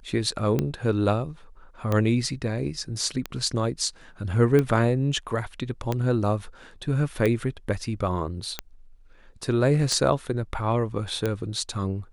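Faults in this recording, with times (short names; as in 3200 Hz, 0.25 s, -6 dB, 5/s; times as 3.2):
tick 45 rpm -12 dBFS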